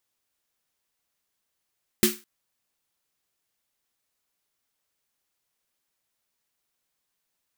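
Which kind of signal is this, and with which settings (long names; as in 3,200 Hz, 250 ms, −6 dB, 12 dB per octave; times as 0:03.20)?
synth snare length 0.21 s, tones 220 Hz, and 360 Hz, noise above 1,300 Hz, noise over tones −1 dB, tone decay 0.23 s, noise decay 0.29 s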